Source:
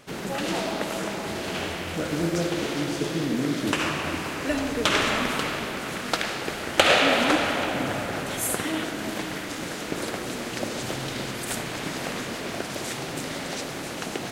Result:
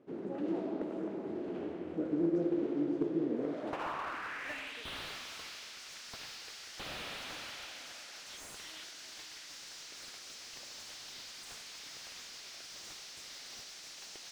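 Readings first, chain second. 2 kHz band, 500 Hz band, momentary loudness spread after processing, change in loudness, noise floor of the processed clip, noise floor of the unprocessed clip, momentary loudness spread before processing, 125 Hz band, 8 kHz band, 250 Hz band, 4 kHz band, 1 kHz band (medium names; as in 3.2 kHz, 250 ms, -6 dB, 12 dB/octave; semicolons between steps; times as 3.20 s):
-18.0 dB, -12.0 dB, 13 LU, -13.0 dB, -50 dBFS, -34 dBFS, 10 LU, -17.5 dB, -14.5 dB, -9.0 dB, -15.5 dB, -17.0 dB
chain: band-pass sweep 330 Hz -> 5.4 kHz, 3.14–5.20 s; slew-rate limiter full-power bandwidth 28 Hz; trim -2 dB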